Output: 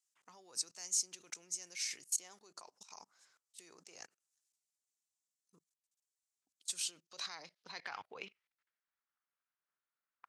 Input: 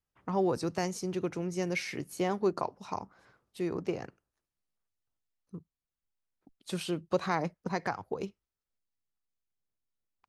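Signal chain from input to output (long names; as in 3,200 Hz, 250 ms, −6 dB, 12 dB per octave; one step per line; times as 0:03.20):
output level in coarse steps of 23 dB
band-pass filter sweep 7,300 Hz → 1,400 Hz, 0:06.78–0:09.00
level +17.5 dB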